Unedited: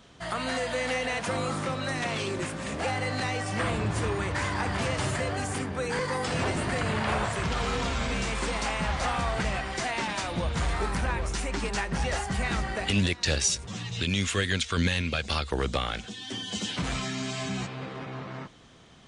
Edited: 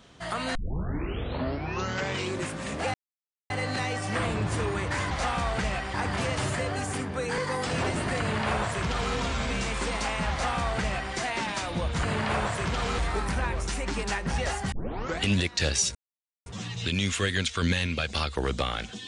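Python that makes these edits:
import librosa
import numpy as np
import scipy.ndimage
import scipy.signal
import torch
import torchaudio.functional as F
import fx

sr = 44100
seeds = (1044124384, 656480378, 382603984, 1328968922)

y = fx.edit(x, sr, fx.tape_start(start_s=0.55, length_s=1.83),
    fx.insert_silence(at_s=2.94, length_s=0.56),
    fx.duplicate(start_s=6.81, length_s=0.95, to_s=10.64),
    fx.duplicate(start_s=8.92, length_s=0.83, to_s=4.55),
    fx.tape_start(start_s=12.38, length_s=0.5),
    fx.insert_silence(at_s=13.61, length_s=0.51), tone=tone)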